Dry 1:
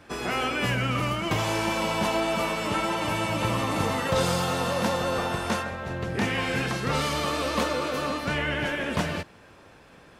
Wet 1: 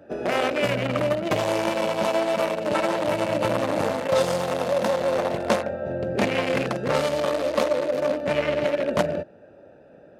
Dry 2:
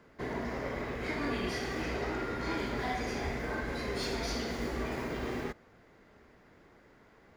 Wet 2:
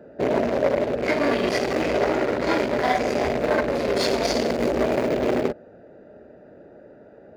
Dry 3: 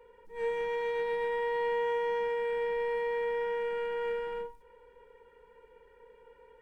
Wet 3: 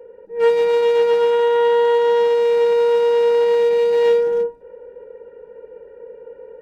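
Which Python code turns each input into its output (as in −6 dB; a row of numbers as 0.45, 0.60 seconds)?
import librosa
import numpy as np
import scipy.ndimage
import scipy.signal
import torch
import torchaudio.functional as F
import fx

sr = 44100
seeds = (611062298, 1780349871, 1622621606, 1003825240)

y = fx.wiener(x, sr, points=41)
y = fx.highpass(y, sr, hz=390.0, slope=6)
y = fx.peak_eq(y, sr, hz=590.0, db=10.0, octaves=0.31)
y = fx.rider(y, sr, range_db=3, speed_s=0.5)
y = y * 10.0 ** (-6 / 20.0) / np.max(np.abs(y))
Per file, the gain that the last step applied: +6.5, +17.0, +19.5 decibels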